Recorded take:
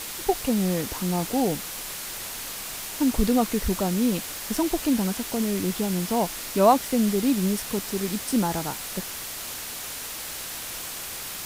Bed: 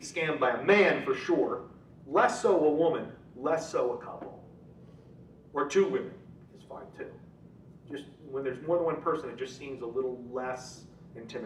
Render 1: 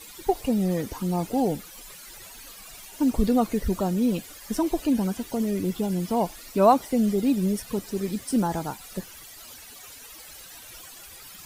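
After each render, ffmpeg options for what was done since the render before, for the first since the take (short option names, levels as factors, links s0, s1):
-af "afftdn=nr=15:nf=-35"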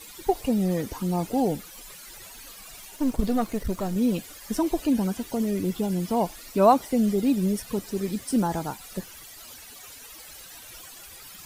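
-filter_complex "[0:a]asettb=1/sr,asplit=3[s0][s1][s2];[s0]atrim=end=2.964[s3];[s1]atrim=start=2.96:end=3.96,asetpts=PTS-STARTPTS,afade=t=in:d=0.004:c=qsin,afade=t=out:st=0.996:d=0.004:c=qsin,aeval=exprs='if(lt(val(0),0),0.447*val(0),val(0))':c=same[s4];[s2]atrim=start=3.956[s5];[s3][s4]acrossfade=d=0.004:c1=hsin:c2=qsin[s6];[s6][s5]acrossfade=d=0.004:c1=qsin:c2=hsin"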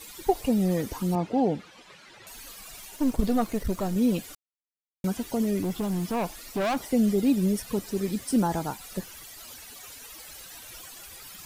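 -filter_complex "[0:a]asettb=1/sr,asplit=3[s0][s1][s2];[s0]atrim=end=1.154[s3];[s1]atrim=start=1.15:end=2.27,asetpts=PTS-STARTPTS,afade=t=in:d=0.004:c=qsin,afade=t=out:st=1.116:d=0.004:c=qsin,highpass=100,lowpass=3400[s4];[s2]atrim=start=2.266[s5];[s3][s4]acrossfade=d=0.004:c1=hsin:c2=qsin[s6];[s6][s5]acrossfade=d=0.004:c1=qsin:c2=hsin,asettb=1/sr,asplit=3[s7][s8][s9];[s7]atrim=end=5.624[s10];[s8]atrim=start=5.62:end=6.89,asetpts=PTS-STARTPTS,afade=t=in:d=0.004:c=qsin,afade=t=out:st=1.266:d=0.004:c=qsin,asoftclip=type=hard:threshold=0.0596[s11];[s9]atrim=start=6.886[s12];[s10][s11]acrossfade=d=0.004:c1=hsin:c2=qsin[s13];[s13][s12]acrossfade=d=0.004:c1=qsin:c2=hsin,asplit=3[s14][s15][s16];[s14]atrim=end=4.35,asetpts=PTS-STARTPTS,afade=t=out:st=4.346:d=0.004:c=hsin[s17];[s15]atrim=start=4.35:end=5.04,asetpts=PTS-STARTPTS,volume=0[s18];[s16]atrim=start=5.04,asetpts=PTS-STARTPTS,afade=t=in:d=0.004:c=hsin[s19];[s17][s18][s19]concat=n=3:v=0:a=1"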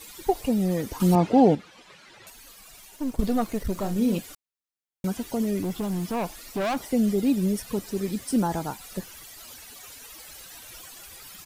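-filter_complex "[0:a]asplit=3[s0][s1][s2];[s0]afade=t=out:st=3.75:d=0.02[s3];[s1]asplit=2[s4][s5];[s5]adelay=35,volume=0.355[s6];[s4][s6]amix=inputs=2:normalize=0,afade=t=in:st=3.75:d=0.02,afade=t=out:st=4.18:d=0.02[s7];[s2]afade=t=in:st=4.18:d=0.02[s8];[s3][s7][s8]amix=inputs=3:normalize=0,asplit=5[s9][s10][s11][s12][s13];[s9]atrim=end=1.002[s14];[s10]atrim=start=0.998:end=1.552,asetpts=PTS-STARTPTS,volume=2.24[s15];[s11]atrim=start=1.548:end=2.302[s16];[s12]atrim=start=2.298:end=3.192,asetpts=PTS-STARTPTS,volume=0.596[s17];[s13]atrim=start=3.188[s18];[s14][s15]acrossfade=d=0.004:c1=hsin:c2=hsin[s19];[s19][s16]acrossfade=d=0.004:c1=hsin:c2=hsin[s20];[s20][s17]acrossfade=d=0.004:c1=hsin:c2=hsin[s21];[s21][s18]acrossfade=d=0.004:c1=hsin:c2=hsin"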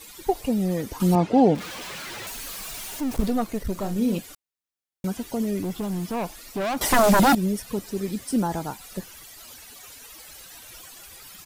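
-filter_complex "[0:a]asettb=1/sr,asplit=3[s0][s1][s2];[s0]atrim=end=1.554[s3];[s1]atrim=start=1.55:end=3.3,asetpts=PTS-STARTPTS,afade=t=in:d=0.004:c=qsin,afade=t=out:st=1.746:d=0.004:c=qsin,aeval=exprs='val(0)+0.5*0.0266*sgn(val(0))':c=same[s4];[s2]atrim=start=3.296[s5];[s3][s4]acrossfade=d=0.004:c1=hsin:c2=qsin[s6];[s6][s5]acrossfade=d=0.004:c1=qsin:c2=hsin,asettb=1/sr,asplit=3[s7][s8][s9];[s7]atrim=end=6.814[s10];[s8]atrim=start=6.81:end=7.35,asetpts=PTS-STARTPTS,afade=t=in:d=0.004:c=qsin,afade=t=out:st=0.536:d=0.004:c=qsin,aeval=exprs='0.224*sin(PI/2*4.47*val(0)/0.224)':c=same[s11];[s9]atrim=start=7.346[s12];[s10][s11]acrossfade=d=0.004:c1=hsin:c2=qsin[s13];[s13][s12]acrossfade=d=0.004:c1=qsin:c2=hsin"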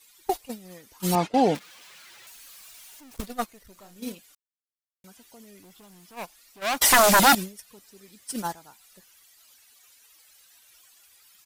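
-af "tiltshelf=f=760:g=-7.5,agate=range=0.112:threshold=0.0562:ratio=16:detection=peak"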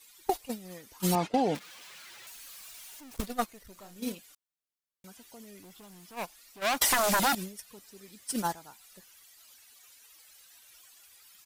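-af "acompressor=threshold=0.0794:ratio=12"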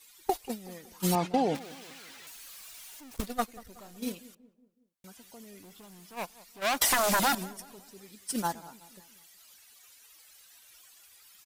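-filter_complex "[0:a]asplit=2[s0][s1];[s1]adelay=186,lowpass=f=1200:p=1,volume=0.126,asplit=2[s2][s3];[s3]adelay=186,lowpass=f=1200:p=1,volume=0.52,asplit=2[s4][s5];[s5]adelay=186,lowpass=f=1200:p=1,volume=0.52,asplit=2[s6][s7];[s7]adelay=186,lowpass=f=1200:p=1,volume=0.52[s8];[s0][s2][s4][s6][s8]amix=inputs=5:normalize=0"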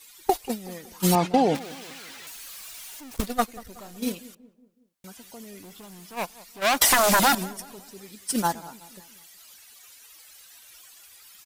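-af "volume=2.11"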